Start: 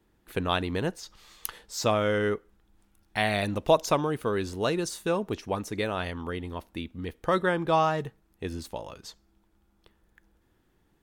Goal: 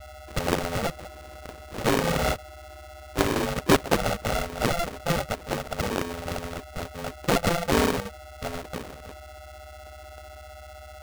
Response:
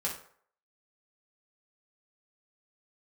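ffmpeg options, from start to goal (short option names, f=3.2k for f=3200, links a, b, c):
-af "aeval=exprs='val(0)+0.00891*sin(2*PI*420*n/s)':c=same,aresample=16000,acrusher=samples=23:mix=1:aa=0.000001,aresample=44100,adynamicsmooth=sensitivity=4:basefreq=780,aeval=exprs='val(0)*sgn(sin(2*PI*340*n/s))':c=same,volume=1.5dB"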